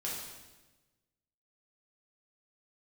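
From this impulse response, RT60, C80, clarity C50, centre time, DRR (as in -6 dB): 1.2 s, 4.0 dB, 1.0 dB, 67 ms, -5.5 dB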